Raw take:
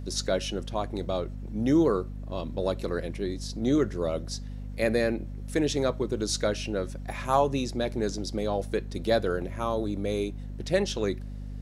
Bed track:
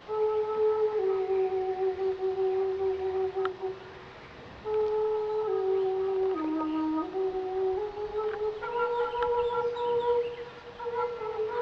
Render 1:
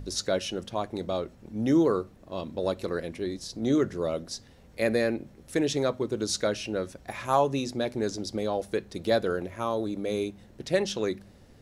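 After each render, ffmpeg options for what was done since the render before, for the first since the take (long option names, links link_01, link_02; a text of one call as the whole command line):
ffmpeg -i in.wav -af "bandreject=frequency=50:width_type=h:width=4,bandreject=frequency=100:width_type=h:width=4,bandreject=frequency=150:width_type=h:width=4,bandreject=frequency=200:width_type=h:width=4,bandreject=frequency=250:width_type=h:width=4" out.wav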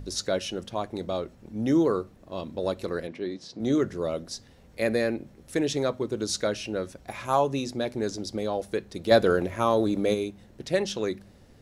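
ffmpeg -i in.wav -filter_complex "[0:a]asettb=1/sr,asplit=3[link_01][link_02][link_03];[link_01]atrim=end=3.074[link_04];[link_02]atrim=start=3.07:end=3.6,asetpts=PTS-STARTPTS,afade=type=in:duration=0.004:curve=qsin,afade=type=out:start_time=0.526:duration=0.004:curve=qsin,highpass=160,lowpass=4200[link_05];[link_03]atrim=start=3.596[link_06];[link_04][link_05]acrossfade=duration=0.004:curve1=hsin:curve2=qsin[link_07];[link_07][link_06]acrossfade=duration=0.004:curve1=qsin:curve2=hsin,asettb=1/sr,asplit=3[link_08][link_09][link_10];[link_08]atrim=end=7.014[link_11];[link_09]atrim=start=7.01:end=7.5,asetpts=PTS-STARTPTS,afade=type=in:duration=0.004:curve=qsin,afade=type=out:start_time=0.486:duration=0.004:curve=qsin,bandreject=frequency=1800:width=12[link_12];[link_10]atrim=start=7.496[link_13];[link_11][link_12]acrossfade=duration=0.004:curve1=hsin:curve2=qsin[link_14];[link_14][link_13]acrossfade=duration=0.004:curve1=qsin:curve2=hsin,asplit=3[link_15][link_16][link_17];[link_15]afade=type=out:start_time=9.1:duration=0.02[link_18];[link_16]acontrast=61,afade=type=in:start_time=9.1:duration=0.02,afade=type=out:start_time=10.13:duration=0.02[link_19];[link_17]afade=type=in:start_time=10.13:duration=0.02[link_20];[link_18][link_19][link_20]amix=inputs=3:normalize=0" out.wav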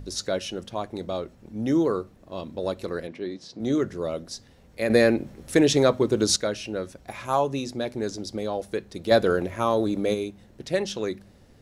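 ffmpeg -i in.wav -filter_complex "[0:a]asplit=3[link_01][link_02][link_03];[link_01]atrim=end=4.902[link_04];[link_02]atrim=start=4.898:end=6.362,asetpts=PTS-STARTPTS,volume=7.5dB[link_05];[link_03]atrim=start=6.358[link_06];[link_04][link_05]acrossfade=duration=0.004:curve1=hsin:curve2=hsin[link_07];[link_07][link_06]acrossfade=duration=0.004:curve1=hsin:curve2=hsin" out.wav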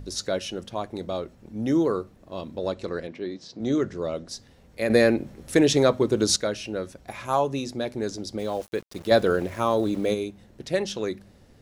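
ffmpeg -i in.wav -filter_complex "[0:a]asettb=1/sr,asplit=3[link_01][link_02][link_03];[link_01]atrim=end=2.594[link_04];[link_02]atrim=start=2.59:end=4.29,asetpts=PTS-STARTPTS,afade=type=in:duration=0.004:curve=qsin,afade=type=out:start_time=1.696:duration=0.004:curve=qsin,lowpass=frequency=8100:width=0.5412,lowpass=frequency=8100:width=1.3066[link_05];[link_03]atrim=start=4.286[link_06];[link_04][link_05]acrossfade=duration=0.004:curve1=hsin:curve2=qsin[link_07];[link_07][link_06]acrossfade=duration=0.004:curve1=qsin:curve2=hsin,asettb=1/sr,asplit=3[link_08][link_09][link_10];[link_08]atrim=end=8.394[link_11];[link_09]atrim=start=8.39:end=10.11,asetpts=PTS-STARTPTS,afade=type=in:duration=0.004:curve=qsin,afade=type=out:start_time=1.716:duration=0.004:curve=qsin,aeval=exprs='val(0)*gte(abs(val(0)),0.00794)':channel_layout=same[link_12];[link_10]atrim=start=10.106[link_13];[link_11][link_12]acrossfade=duration=0.004:curve1=hsin:curve2=qsin[link_14];[link_14][link_13]acrossfade=duration=0.004:curve1=qsin:curve2=hsin" out.wav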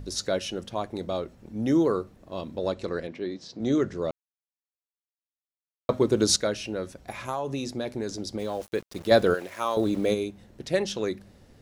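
ffmpeg -i in.wav -filter_complex "[0:a]asettb=1/sr,asplit=3[link_01][link_02][link_03];[link_01]atrim=end=6.704[link_04];[link_02]atrim=start=6.7:end=8.72,asetpts=PTS-STARTPTS,afade=type=in:duration=0.004:curve=qsin,afade=type=out:start_time=2.016:duration=0.004:curve=qsin,acompressor=threshold=-25dB:ratio=6:attack=3.2:release=140:knee=1:detection=peak[link_05];[link_03]atrim=start=8.716[link_06];[link_04][link_05]acrossfade=duration=0.004:curve1=hsin:curve2=qsin[link_07];[link_07][link_06]acrossfade=duration=0.004:curve1=qsin:curve2=hsin,asettb=1/sr,asplit=3[link_08][link_09][link_10];[link_08]atrim=end=9.344[link_11];[link_09]atrim=start=9.34:end=9.77,asetpts=PTS-STARTPTS,afade=type=in:duration=0.004:curve=qsin,afade=type=out:start_time=0.426:duration=0.004:curve=qsin,highpass=frequency=970:poles=1[link_12];[link_10]atrim=start=9.766[link_13];[link_11][link_12]acrossfade=duration=0.004:curve1=hsin:curve2=qsin[link_14];[link_14][link_13]acrossfade=duration=0.004:curve1=qsin:curve2=hsin,asplit=3[link_15][link_16][link_17];[link_15]atrim=end=4.11,asetpts=PTS-STARTPTS,afade=type=out:start_time=4.106:duration=0.004:curve=hsin[link_18];[link_16]atrim=start=4.11:end=5.89,asetpts=PTS-STARTPTS,volume=0[link_19];[link_17]atrim=start=5.89,asetpts=PTS-STARTPTS,afade=type=in:duration=0.004:curve=hsin[link_20];[link_18][link_19][link_20]concat=n=3:v=0:a=1" out.wav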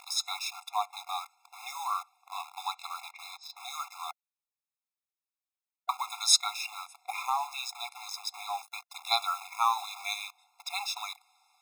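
ffmpeg -i in.wav -filter_complex "[0:a]asplit=2[link_01][link_02];[link_02]acrusher=bits=5:mix=0:aa=0.000001,volume=-3.5dB[link_03];[link_01][link_03]amix=inputs=2:normalize=0,afftfilt=real='re*eq(mod(floor(b*sr/1024/690),2),1)':imag='im*eq(mod(floor(b*sr/1024/690),2),1)':win_size=1024:overlap=0.75" out.wav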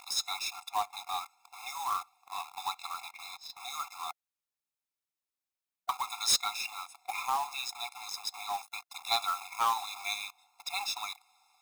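ffmpeg -i in.wav -af "asoftclip=type=tanh:threshold=-20dB,acrusher=bits=3:mode=log:mix=0:aa=0.000001" out.wav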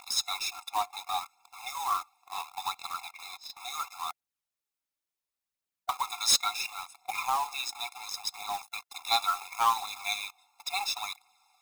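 ffmpeg -i in.wav -filter_complex "[0:a]asplit=2[link_01][link_02];[link_02]aeval=exprs='val(0)*gte(abs(val(0)),0.0112)':channel_layout=same,volume=-11dB[link_03];[link_01][link_03]amix=inputs=2:normalize=0,aphaser=in_gain=1:out_gain=1:delay=3.7:decay=0.35:speed=0.71:type=triangular" out.wav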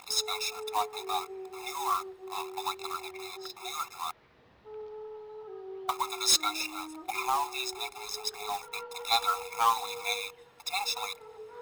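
ffmpeg -i in.wav -i bed.wav -filter_complex "[1:a]volume=-15dB[link_01];[0:a][link_01]amix=inputs=2:normalize=0" out.wav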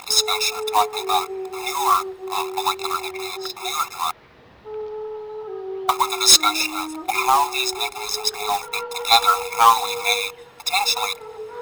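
ffmpeg -i in.wav -af "volume=12dB" out.wav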